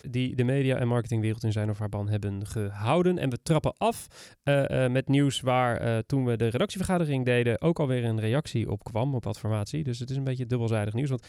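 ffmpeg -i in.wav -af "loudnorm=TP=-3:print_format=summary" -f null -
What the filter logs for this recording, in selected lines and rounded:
Input Integrated:    -27.9 LUFS
Input True Peak:     -12.3 dBTP
Input LRA:             3.7 LU
Input Threshold:     -38.0 LUFS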